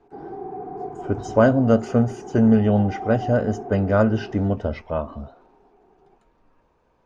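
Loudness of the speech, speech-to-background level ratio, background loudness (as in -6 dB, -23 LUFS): -20.5 LUFS, 14.0 dB, -34.5 LUFS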